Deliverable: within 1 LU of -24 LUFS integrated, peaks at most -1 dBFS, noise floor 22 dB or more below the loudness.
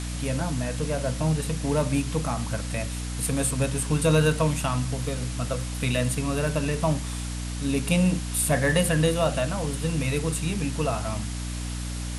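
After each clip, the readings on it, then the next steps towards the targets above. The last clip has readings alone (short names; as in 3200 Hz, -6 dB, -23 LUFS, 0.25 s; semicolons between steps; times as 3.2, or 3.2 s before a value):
hum 60 Hz; harmonics up to 300 Hz; hum level -29 dBFS; noise floor -32 dBFS; noise floor target -48 dBFS; loudness -26.0 LUFS; peak -9.5 dBFS; loudness target -24.0 LUFS
-> de-hum 60 Hz, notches 5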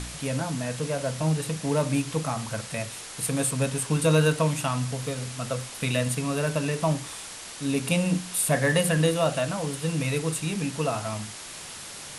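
hum none; noise floor -40 dBFS; noise floor target -49 dBFS
-> denoiser 9 dB, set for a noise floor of -40 dBFS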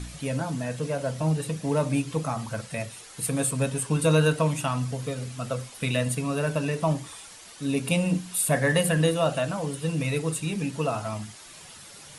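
noise floor -47 dBFS; noise floor target -49 dBFS
-> denoiser 6 dB, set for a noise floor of -47 dBFS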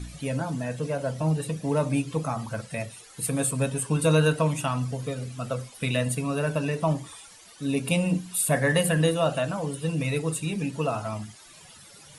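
noise floor -50 dBFS; loudness -27.0 LUFS; peak -9.5 dBFS; loudness target -24.0 LUFS
-> gain +3 dB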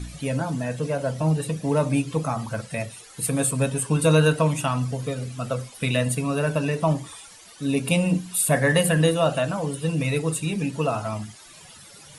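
loudness -24.0 LUFS; peak -6.5 dBFS; noise floor -47 dBFS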